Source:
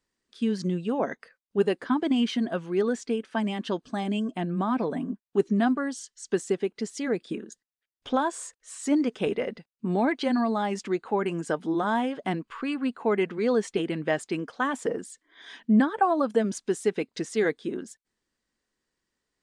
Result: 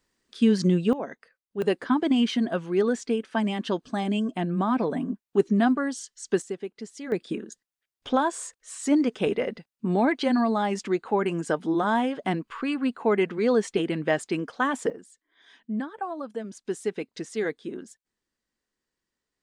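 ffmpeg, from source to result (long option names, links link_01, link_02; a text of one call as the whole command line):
ffmpeg -i in.wav -af "asetnsamples=nb_out_samples=441:pad=0,asendcmd='0.93 volume volume -6dB;1.62 volume volume 2dB;6.42 volume volume -6.5dB;7.12 volume volume 2dB;14.9 volume volume -10dB;16.65 volume volume -3.5dB',volume=6.5dB" out.wav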